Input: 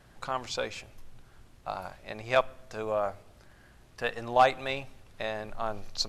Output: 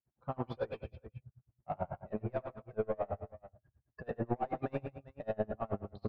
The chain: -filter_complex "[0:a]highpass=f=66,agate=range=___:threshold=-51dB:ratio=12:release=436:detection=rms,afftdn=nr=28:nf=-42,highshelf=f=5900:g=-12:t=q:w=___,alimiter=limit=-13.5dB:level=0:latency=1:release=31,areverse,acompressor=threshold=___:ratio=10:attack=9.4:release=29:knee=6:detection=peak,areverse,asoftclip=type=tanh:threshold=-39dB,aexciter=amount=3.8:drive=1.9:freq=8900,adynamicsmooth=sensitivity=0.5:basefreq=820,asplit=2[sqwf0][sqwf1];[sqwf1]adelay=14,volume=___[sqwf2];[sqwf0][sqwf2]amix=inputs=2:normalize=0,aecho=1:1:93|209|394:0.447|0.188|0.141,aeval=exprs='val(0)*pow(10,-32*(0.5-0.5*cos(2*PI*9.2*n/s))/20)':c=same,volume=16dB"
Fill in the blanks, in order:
-6dB, 1.5, -37dB, -13dB